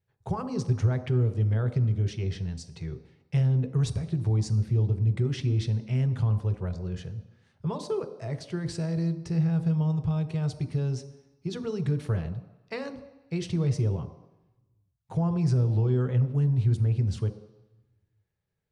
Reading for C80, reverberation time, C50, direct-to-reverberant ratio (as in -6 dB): 13.5 dB, 1.0 s, 12.0 dB, 8.0 dB